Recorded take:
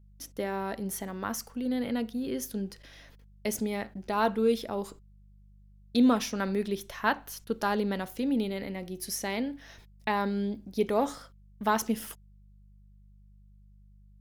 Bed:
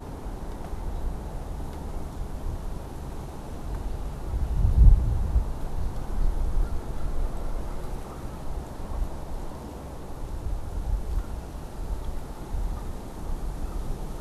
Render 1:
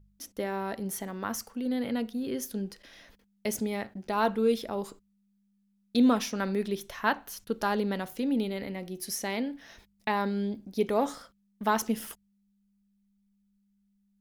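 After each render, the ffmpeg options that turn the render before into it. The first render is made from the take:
ffmpeg -i in.wav -af "bandreject=frequency=50:width_type=h:width=4,bandreject=frequency=100:width_type=h:width=4,bandreject=frequency=150:width_type=h:width=4" out.wav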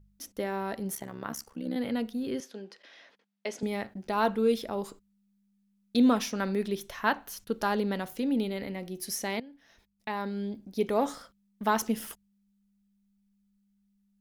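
ffmpeg -i in.wav -filter_complex "[0:a]asettb=1/sr,asplit=3[link_01][link_02][link_03];[link_01]atrim=end=0.954[link_04];[link_02]atrim=start=0.95:end=1.76,asetpts=PTS-STARTPTS,afade=type=in:duration=0.004:curve=qsin,afade=type=out:start_time=0.806:duration=0.004:curve=qsin,tremolo=f=68:d=0.889[link_05];[link_03]atrim=start=1.756[link_06];[link_04][link_05]acrossfade=duration=0.004:curve1=hsin:curve2=qsin[link_07];[link_07][link_06]acrossfade=duration=0.004:curve1=qsin:curve2=hsin,asettb=1/sr,asplit=3[link_08][link_09][link_10];[link_08]atrim=end=2.404[link_11];[link_09]atrim=start=2.4:end=3.63,asetpts=PTS-STARTPTS,afade=type=in:duration=0.004:curve=qsin,afade=type=out:start_time=1.226:duration=0.004:curve=qsin,highpass=410,lowpass=4500[link_12];[link_10]atrim=start=3.626[link_13];[link_11][link_12]acrossfade=duration=0.004:curve1=hsin:curve2=qsin[link_14];[link_14][link_13]acrossfade=duration=0.004:curve1=qsin:curve2=hsin,asplit=2[link_15][link_16];[link_15]atrim=end=9.4,asetpts=PTS-STARTPTS,afade=type=out:start_time=9.396:duration=0.004:curve=hsin:silence=0.149624[link_17];[link_16]atrim=start=9.4,asetpts=PTS-STARTPTS,afade=type=in:duration=1.62:silence=0.149624[link_18];[link_17][link_18]concat=n=2:v=0:a=1" out.wav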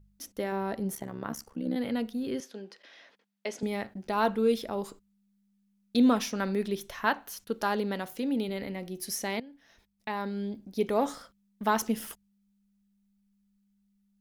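ffmpeg -i in.wav -filter_complex "[0:a]asettb=1/sr,asplit=3[link_01][link_02][link_03];[link_01]atrim=end=0.524[link_04];[link_02]atrim=start=0.52:end=1.75,asetpts=PTS-STARTPTS,afade=type=in:duration=0.004:curve=qsin,afade=type=out:start_time=1.226:duration=0.004:curve=qsin,tiltshelf=frequency=970:gain=3[link_05];[link_03]atrim=start=1.746[link_06];[link_04][link_05]acrossfade=duration=0.004:curve1=hsin:curve2=qsin[link_07];[link_07][link_06]acrossfade=duration=0.004:curve1=qsin:curve2=hsin,asettb=1/sr,asplit=3[link_08][link_09][link_10];[link_08]atrim=end=7.054[link_11];[link_09]atrim=start=7.05:end=8.49,asetpts=PTS-STARTPTS,afade=type=in:duration=0.004:curve=qsin,afade=type=out:start_time=1.436:duration=0.004:curve=qsin,lowshelf=frequency=130:gain=-8[link_12];[link_10]atrim=start=8.486[link_13];[link_11][link_12]acrossfade=duration=0.004:curve1=hsin:curve2=qsin[link_14];[link_14][link_13]acrossfade=duration=0.004:curve1=qsin:curve2=hsin" out.wav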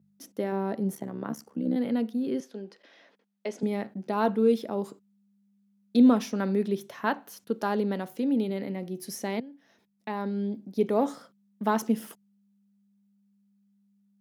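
ffmpeg -i in.wav -af "highpass=frequency=150:width=0.5412,highpass=frequency=150:width=1.3066,tiltshelf=frequency=810:gain=5" out.wav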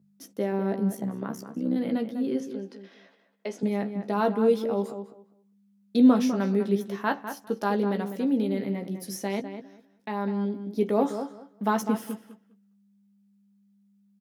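ffmpeg -i in.wav -filter_complex "[0:a]asplit=2[link_01][link_02];[link_02]adelay=15,volume=-7.5dB[link_03];[link_01][link_03]amix=inputs=2:normalize=0,asplit=2[link_04][link_05];[link_05]adelay=201,lowpass=frequency=2400:poles=1,volume=-9dB,asplit=2[link_06][link_07];[link_07]adelay=201,lowpass=frequency=2400:poles=1,volume=0.19,asplit=2[link_08][link_09];[link_09]adelay=201,lowpass=frequency=2400:poles=1,volume=0.19[link_10];[link_04][link_06][link_08][link_10]amix=inputs=4:normalize=0" out.wav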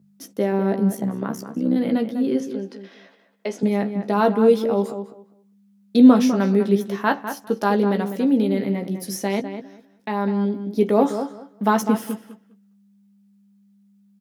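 ffmpeg -i in.wav -af "volume=6.5dB" out.wav

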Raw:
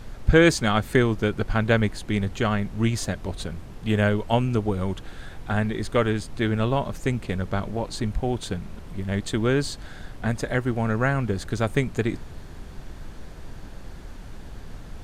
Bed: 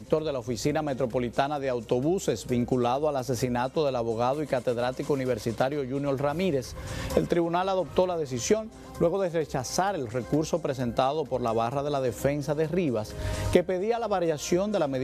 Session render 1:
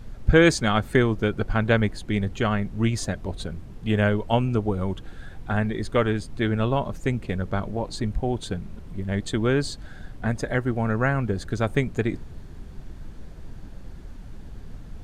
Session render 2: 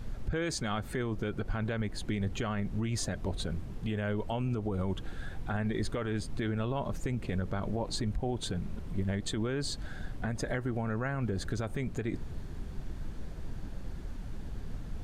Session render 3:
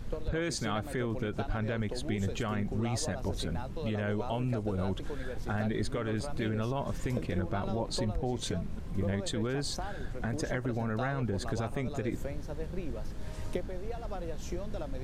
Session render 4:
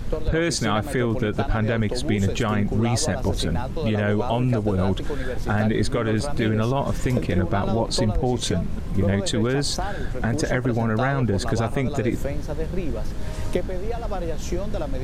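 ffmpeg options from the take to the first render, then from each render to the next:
ffmpeg -i in.wav -af "afftdn=noise_reduction=7:noise_floor=-40" out.wav
ffmpeg -i in.wav -af "acompressor=threshold=-26dB:ratio=2.5,alimiter=limit=-23.5dB:level=0:latency=1:release=46" out.wav
ffmpeg -i in.wav -i bed.wav -filter_complex "[1:a]volume=-14.5dB[link_01];[0:a][link_01]amix=inputs=2:normalize=0" out.wav
ffmpeg -i in.wav -af "volume=10.5dB" out.wav

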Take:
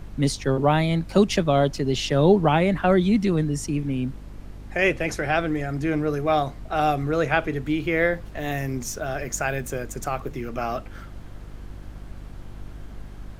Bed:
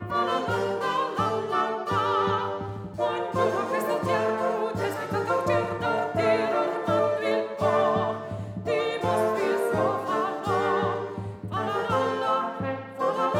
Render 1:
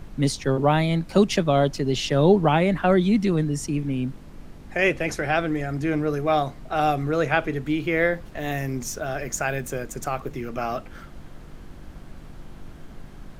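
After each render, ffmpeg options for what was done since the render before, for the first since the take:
ffmpeg -i in.wav -af "bandreject=frequency=50:width_type=h:width=4,bandreject=frequency=100:width_type=h:width=4" out.wav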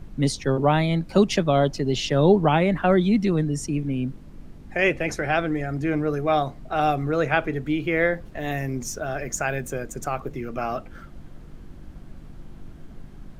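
ffmpeg -i in.wav -af "afftdn=noise_reduction=6:noise_floor=-43" out.wav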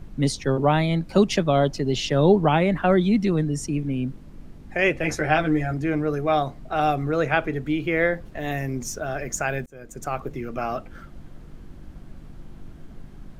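ffmpeg -i in.wav -filter_complex "[0:a]asettb=1/sr,asplit=3[link_01][link_02][link_03];[link_01]atrim=end=5.024[link_04];[link_02]atrim=start=5.02:end=5.74,asetpts=PTS-STARTPTS,afade=type=in:duration=0.004:curve=qsin,afade=type=out:start_time=0.716:duration=0.004:curve=qsin,asplit=2[link_05][link_06];[link_06]adelay=13,volume=-2.5dB[link_07];[link_05][link_07]amix=inputs=2:normalize=0,atrim=end_sample=31752[link_08];[link_03]atrim=start=5.736[link_09];[link_04][link_08]acrossfade=duration=0.004:curve1=hsin:curve2=qsin[link_10];[link_10][link_09]acrossfade=duration=0.004:curve1=qsin:curve2=hsin,asplit=2[link_11][link_12];[link_11]atrim=end=9.66,asetpts=PTS-STARTPTS,afade=type=out:start_time=9.656:duration=0.004:curve=hsin[link_13];[link_12]atrim=start=9.66,asetpts=PTS-STARTPTS,afade=type=in:duration=0.49[link_14];[link_13][link_14]concat=n=2:v=0:a=1" out.wav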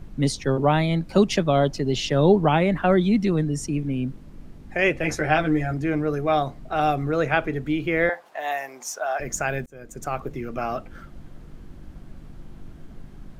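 ffmpeg -i in.wav -filter_complex "[0:a]asettb=1/sr,asplit=3[link_01][link_02][link_03];[link_01]atrim=end=8.094[link_04];[link_02]atrim=start=8.09:end=9.2,asetpts=PTS-STARTPTS,afade=type=in:duration=0.004:curve=qsin,afade=type=out:start_time=1.106:duration=0.004:curve=qsin,highpass=frequency=800:width_type=q:width=2.6[link_05];[link_03]atrim=start=9.196[link_06];[link_04][link_05]acrossfade=duration=0.004:curve1=hsin:curve2=qsin[link_07];[link_07][link_06]acrossfade=duration=0.004:curve1=qsin:curve2=hsin" out.wav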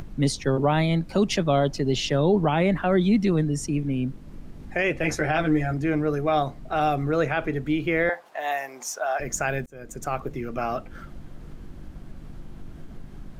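ffmpeg -i in.wav -af "acompressor=mode=upward:threshold=-33dB:ratio=2.5,alimiter=limit=-12dB:level=0:latency=1:release=28" out.wav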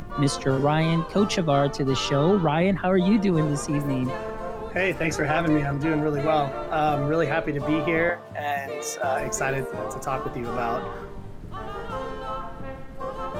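ffmpeg -i in.wav -i bed.wav -filter_complex "[1:a]volume=-7.5dB[link_01];[0:a][link_01]amix=inputs=2:normalize=0" out.wav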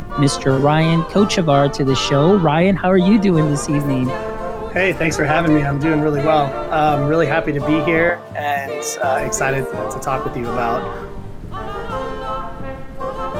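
ffmpeg -i in.wav -af "volume=7.5dB" out.wav

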